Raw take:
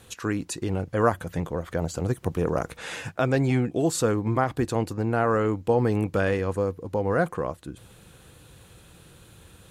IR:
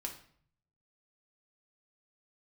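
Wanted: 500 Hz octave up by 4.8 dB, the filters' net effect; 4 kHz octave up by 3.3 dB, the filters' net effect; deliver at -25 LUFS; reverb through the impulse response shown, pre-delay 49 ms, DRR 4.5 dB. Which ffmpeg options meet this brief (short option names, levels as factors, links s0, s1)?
-filter_complex "[0:a]equalizer=f=500:t=o:g=5.5,equalizer=f=4000:t=o:g=4,asplit=2[s0][s1];[1:a]atrim=start_sample=2205,adelay=49[s2];[s1][s2]afir=irnorm=-1:irlink=0,volume=0.668[s3];[s0][s3]amix=inputs=2:normalize=0,volume=0.708"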